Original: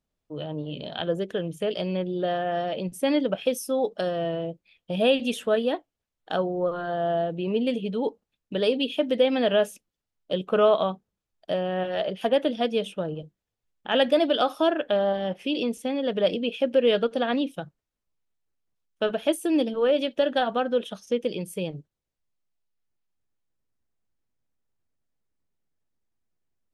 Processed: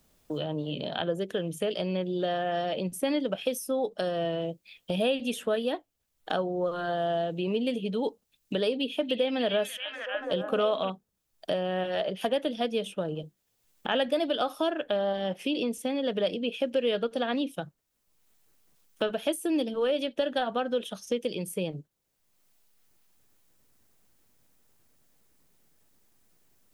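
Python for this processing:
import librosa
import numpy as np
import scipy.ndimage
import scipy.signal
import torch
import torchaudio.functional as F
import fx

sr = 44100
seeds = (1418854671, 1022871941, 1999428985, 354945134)

y = fx.high_shelf(x, sr, hz=7100.0, db=9.5)
y = fx.echo_stepped(y, sr, ms=289, hz=3000.0, octaves=-0.7, feedback_pct=70, wet_db=-1.0, at=(8.76, 10.9))
y = fx.band_squash(y, sr, depth_pct=70)
y = y * 10.0 ** (-4.5 / 20.0)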